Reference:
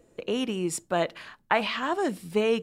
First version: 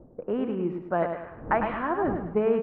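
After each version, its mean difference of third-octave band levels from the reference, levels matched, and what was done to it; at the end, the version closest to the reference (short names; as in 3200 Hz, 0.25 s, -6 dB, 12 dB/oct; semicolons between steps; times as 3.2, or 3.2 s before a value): 10.5 dB: wind noise 450 Hz -43 dBFS; low-pass opened by the level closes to 480 Hz, open at -22.5 dBFS; LPF 1700 Hz 24 dB/oct; on a send: feedback echo 0.104 s, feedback 39%, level -6.5 dB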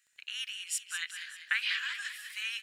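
17.5 dB: elliptic high-pass 1600 Hz, stop band 60 dB; crackle 20/s -53 dBFS; on a send: frequency-shifting echo 0.196 s, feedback 52%, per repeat +48 Hz, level -9 dB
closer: first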